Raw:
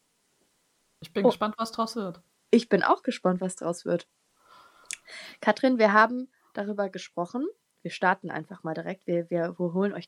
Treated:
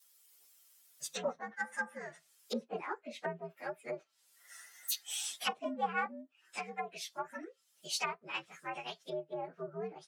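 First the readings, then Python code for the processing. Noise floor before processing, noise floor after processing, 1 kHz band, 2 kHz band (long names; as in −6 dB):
−72 dBFS, −73 dBFS, −12.0 dB, −10.5 dB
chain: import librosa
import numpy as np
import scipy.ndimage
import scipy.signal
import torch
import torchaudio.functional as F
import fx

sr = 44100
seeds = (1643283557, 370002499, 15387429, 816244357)

y = fx.partial_stretch(x, sr, pct=122)
y = fx.wow_flutter(y, sr, seeds[0], rate_hz=2.1, depth_cents=23.0)
y = fx.highpass(y, sr, hz=100.0, slope=6)
y = fx.env_lowpass_down(y, sr, base_hz=690.0, full_db=-26.0)
y = np.diff(y, prepend=0.0)
y = F.gain(torch.from_numpy(y), 13.5).numpy()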